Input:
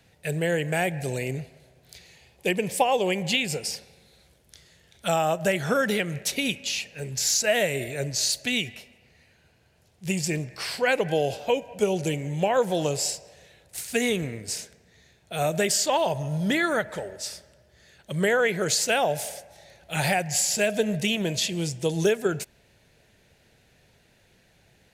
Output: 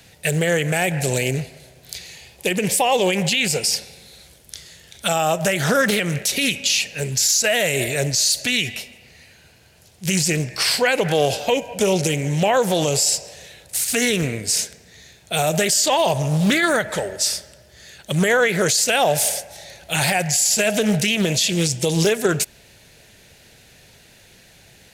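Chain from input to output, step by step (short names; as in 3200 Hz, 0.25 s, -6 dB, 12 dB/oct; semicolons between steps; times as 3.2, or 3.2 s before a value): high shelf 2900 Hz +9 dB; limiter -17 dBFS, peak gain reduction 14 dB; Doppler distortion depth 0.25 ms; gain +8.5 dB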